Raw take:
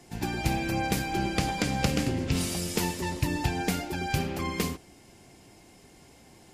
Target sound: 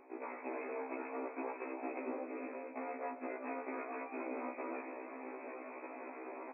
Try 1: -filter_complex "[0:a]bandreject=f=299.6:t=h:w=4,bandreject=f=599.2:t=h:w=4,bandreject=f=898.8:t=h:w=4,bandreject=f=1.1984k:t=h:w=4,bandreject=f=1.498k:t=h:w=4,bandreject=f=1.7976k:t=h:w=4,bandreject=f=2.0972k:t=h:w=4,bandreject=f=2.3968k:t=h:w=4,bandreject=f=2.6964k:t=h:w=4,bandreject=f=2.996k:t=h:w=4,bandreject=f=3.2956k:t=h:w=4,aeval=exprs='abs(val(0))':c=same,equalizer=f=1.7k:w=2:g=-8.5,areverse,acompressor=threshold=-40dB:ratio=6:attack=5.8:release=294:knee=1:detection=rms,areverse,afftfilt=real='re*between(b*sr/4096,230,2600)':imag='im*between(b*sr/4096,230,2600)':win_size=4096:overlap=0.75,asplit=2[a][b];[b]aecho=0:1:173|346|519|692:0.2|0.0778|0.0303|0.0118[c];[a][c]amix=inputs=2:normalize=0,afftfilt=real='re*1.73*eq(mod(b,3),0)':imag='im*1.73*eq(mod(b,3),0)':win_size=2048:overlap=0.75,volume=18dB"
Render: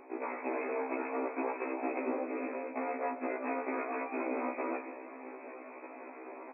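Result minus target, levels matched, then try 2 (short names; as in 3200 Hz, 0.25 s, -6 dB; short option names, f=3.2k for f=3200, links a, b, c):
compressor: peak gain reduction -6.5 dB
-filter_complex "[0:a]bandreject=f=299.6:t=h:w=4,bandreject=f=599.2:t=h:w=4,bandreject=f=898.8:t=h:w=4,bandreject=f=1.1984k:t=h:w=4,bandreject=f=1.498k:t=h:w=4,bandreject=f=1.7976k:t=h:w=4,bandreject=f=2.0972k:t=h:w=4,bandreject=f=2.3968k:t=h:w=4,bandreject=f=2.6964k:t=h:w=4,bandreject=f=2.996k:t=h:w=4,bandreject=f=3.2956k:t=h:w=4,aeval=exprs='abs(val(0))':c=same,equalizer=f=1.7k:w=2:g=-8.5,areverse,acompressor=threshold=-48dB:ratio=6:attack=5.8:release=294:knee=1:detection=rms,areverse,afftfilt=real='re*between(b*sr/4096,230,2600)':imag='im*between(b*sr/4096,230,2600)':win_size=4096:overlap=0.75,asplit=2[a][b];[b]aecho=0:1:173|346|519|692:0.2|0.0778|0.0303|0.0118[c];[a][c]amix=inputs=2:normalize=0,afftfilt=real='re*1.73*eq(mod(b,3),0)':imag='im*1.73*eq(mod(b,3),0)':win_size=2048:overlap=0.75,volume=18dB"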